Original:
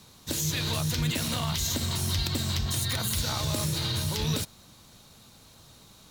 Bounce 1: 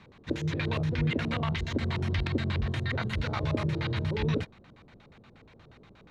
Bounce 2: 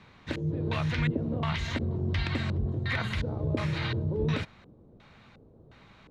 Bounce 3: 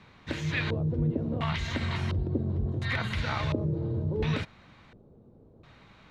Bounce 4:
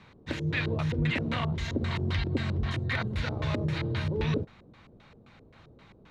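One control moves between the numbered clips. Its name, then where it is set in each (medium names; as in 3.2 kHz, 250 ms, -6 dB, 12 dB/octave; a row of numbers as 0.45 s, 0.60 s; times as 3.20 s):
LFO low-pass, rate: 8.4 Hz, 1.4 Hz, 0.71 Hz, 3.8 Hz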